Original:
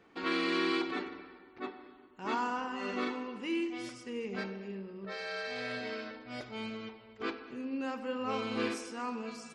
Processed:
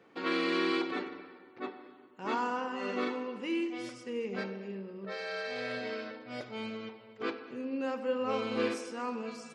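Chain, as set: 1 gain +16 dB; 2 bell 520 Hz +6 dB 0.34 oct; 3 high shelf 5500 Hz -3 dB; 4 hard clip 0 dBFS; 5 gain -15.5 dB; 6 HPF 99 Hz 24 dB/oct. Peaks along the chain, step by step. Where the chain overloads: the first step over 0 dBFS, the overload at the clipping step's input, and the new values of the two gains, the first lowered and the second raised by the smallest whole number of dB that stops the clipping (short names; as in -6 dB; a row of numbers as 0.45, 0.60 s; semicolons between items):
-4.0, -3.0, -3.0, -3.0, -18.5, -19.0 dBFS; no overload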